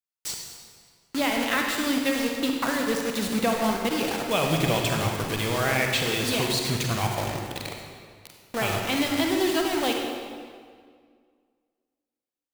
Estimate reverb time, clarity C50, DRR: 1.9 s, 2.0 dB, 1.0 dB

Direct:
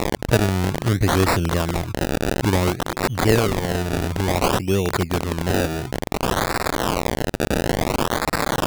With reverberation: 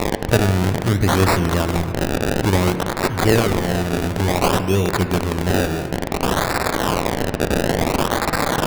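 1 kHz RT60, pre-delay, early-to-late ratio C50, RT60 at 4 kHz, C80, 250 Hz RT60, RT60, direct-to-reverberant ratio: 2.4 s, 5 ms, 10.0 dB, 1.7 s, 10.5 dB, 3.3 s, 2.6 s, 8.0 dB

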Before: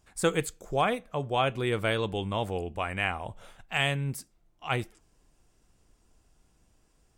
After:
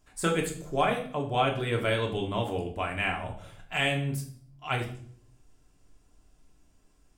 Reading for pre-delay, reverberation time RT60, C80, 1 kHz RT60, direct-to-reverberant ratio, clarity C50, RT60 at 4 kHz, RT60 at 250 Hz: 3 ms, 0.55 s, 13.5 dB, 0.45 s, 0.5 dB, 9.0 dB, 0.50 s, 0.80 s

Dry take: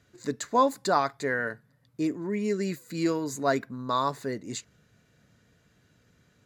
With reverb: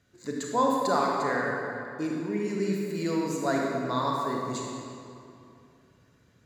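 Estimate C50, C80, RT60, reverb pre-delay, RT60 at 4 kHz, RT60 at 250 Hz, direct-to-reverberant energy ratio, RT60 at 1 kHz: -1.0 dB, 0.5 dB, 2.6 s, 30 ms, 1.8 s, 3.0 s, -2.0 dB, 2.6 s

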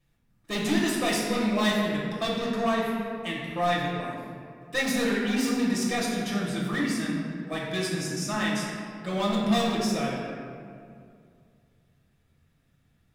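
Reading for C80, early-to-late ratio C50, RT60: 2.0 dB, 0.5 dB, 2.3 s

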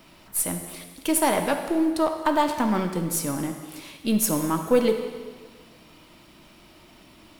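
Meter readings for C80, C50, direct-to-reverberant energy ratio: 8.5 dB, 7.0 dB, 4.5 dB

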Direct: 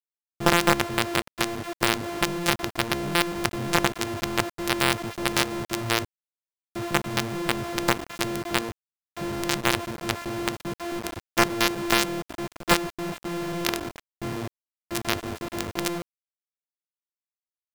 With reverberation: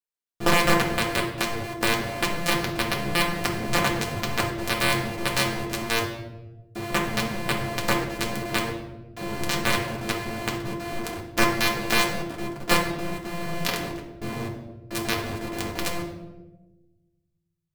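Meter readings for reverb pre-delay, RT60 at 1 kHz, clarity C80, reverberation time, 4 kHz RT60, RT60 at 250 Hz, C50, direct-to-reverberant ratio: 4 ms, 0.95 s, 9.0 dB, 1.1 s, 0.70 s, 1.5 s, 6.0 dB, -1.5 dB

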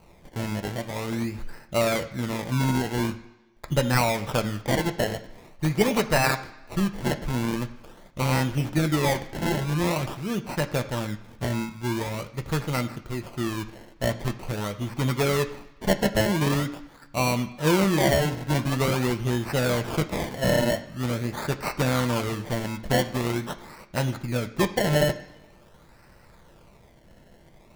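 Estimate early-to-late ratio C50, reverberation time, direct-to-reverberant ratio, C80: 13.5 dB, 1.1 s, 5.0 dB, 16.0 dB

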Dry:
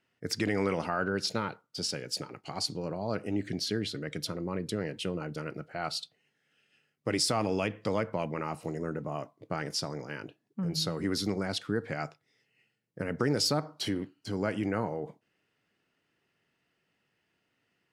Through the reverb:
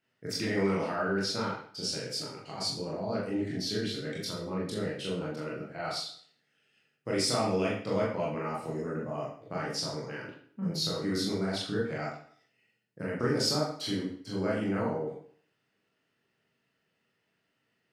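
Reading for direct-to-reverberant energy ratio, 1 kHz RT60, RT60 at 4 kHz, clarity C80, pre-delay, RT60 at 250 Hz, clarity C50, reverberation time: -5.5 dB, 0.55 s, 0.50 s, 7.5 dB, 21 ms, 0.55 s, 4.0 dB, 0.55 s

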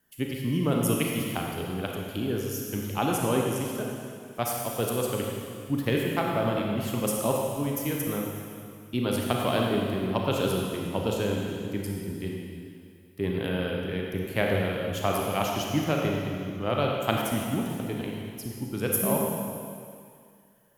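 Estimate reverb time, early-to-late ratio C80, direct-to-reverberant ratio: 2.3 s, 1.0 dB, -1.0 dB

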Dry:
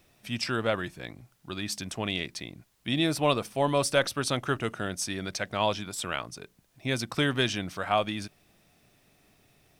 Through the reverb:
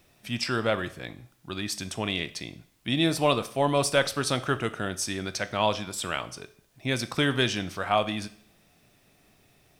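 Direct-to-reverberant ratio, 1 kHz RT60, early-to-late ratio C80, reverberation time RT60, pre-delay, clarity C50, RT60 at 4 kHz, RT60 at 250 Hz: 12.0 dB, 0.60 s, 20.0 dB, 0.55 s, 18 ms, 16.5 dB, 0.55 s, 0.65 s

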